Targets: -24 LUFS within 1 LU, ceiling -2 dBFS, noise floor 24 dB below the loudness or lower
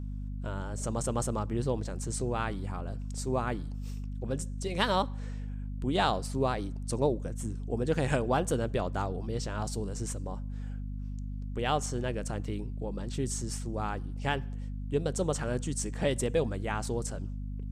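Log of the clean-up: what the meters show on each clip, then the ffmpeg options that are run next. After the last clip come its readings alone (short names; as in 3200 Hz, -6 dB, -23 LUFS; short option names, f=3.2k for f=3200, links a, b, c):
hum 50 Hz; harmonics up to 250 Hz; hum level -34 dBFS; loudness -33.0 LUFS; peak -12.0 dBFS; loudness target -24.0 LUFS
-> -af "bandreject=f=50:t=h:w=4,bandreject=f=100:t=h:w=4,bandreject=f=150:t=h:w=4,bandreject=f=200:t=h:w=4,bandreject=f=250:t=h:w=4"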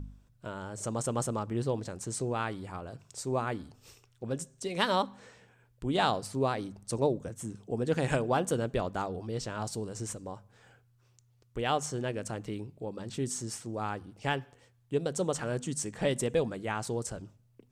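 hum none; loudness -33.5 LUFS; peak -12.0 dBFS; loudness target -24.0 LUFS
-> -af "volume=9.5dB"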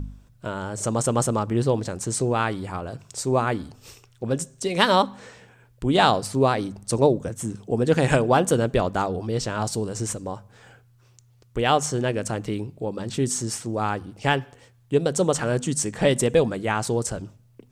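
loudness -24.0 LUFS; peak -2.5 dBFS; noise floor -57 dBFS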